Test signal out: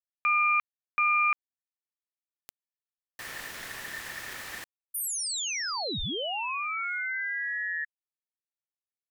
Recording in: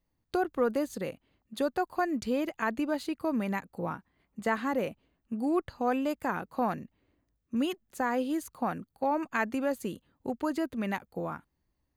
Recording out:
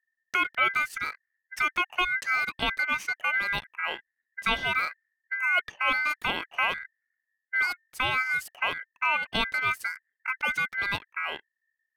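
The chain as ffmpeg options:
-af "anlmdn=0.000631,aeval=exprs='val(0)*sin(2*PI*1800*n/s)':c=same,volume=1.88"

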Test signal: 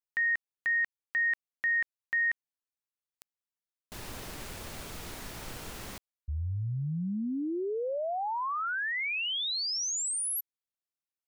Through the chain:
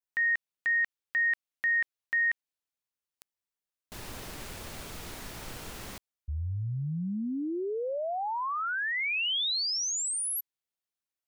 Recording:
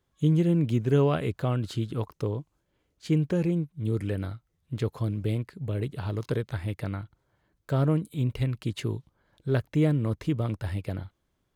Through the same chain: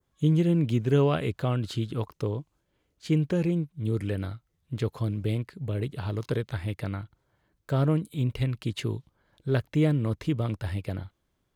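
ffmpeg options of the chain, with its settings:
-af "adynamicequalizer=threshold=0.00501:dfrequency=3300:dqfactor=0.92:tfrequency=3300:tqfactor=0.92:attack=5:release=100:ratio=0.375:range=1.5:mode=boostabove:tftype=bell"

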